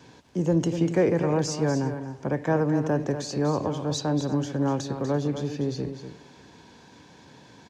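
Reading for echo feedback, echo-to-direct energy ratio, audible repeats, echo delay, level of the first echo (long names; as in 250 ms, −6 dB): repeats not evenly spaced, −9.0 dB, 3, 244 ms, −9.5 dB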